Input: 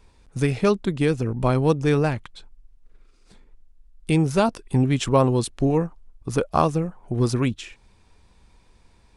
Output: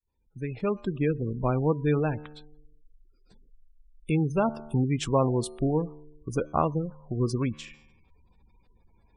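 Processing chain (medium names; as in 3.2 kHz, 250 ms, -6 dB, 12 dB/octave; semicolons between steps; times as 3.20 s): fade-in on the opening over 0.94 s; feedback comb 75 Hz, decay 1.2 s, harmonics all, mix 50%; spectral gate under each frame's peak -25 dB strong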